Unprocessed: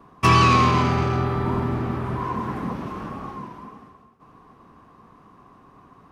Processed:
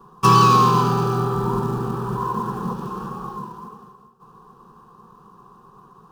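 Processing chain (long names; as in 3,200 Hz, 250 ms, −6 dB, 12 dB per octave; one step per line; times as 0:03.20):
in parallel at −7 dB: floating-point word with a short mantissa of 2 bits
on the sum: phaser with its sweep stopped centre 420 Hz, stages 8
every ending faded ahead of time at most 140 dB per second
level +1 dB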